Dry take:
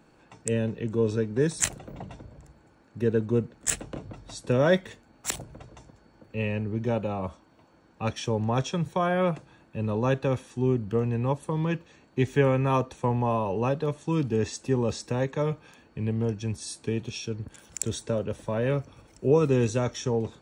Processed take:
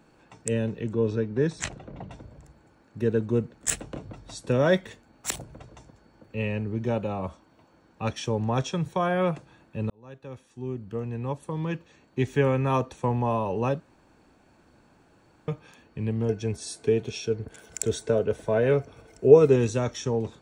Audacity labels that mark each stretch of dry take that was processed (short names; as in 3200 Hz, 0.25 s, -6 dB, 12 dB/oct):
0.930000	2.110000	air absorption 120 m
9.900000	13.280000	fade in equal-power
13.800000	15.480000	room tone
16.290000	19.560000	small resonant body resonances 440/670/1500/2100 Hz, height 11 dB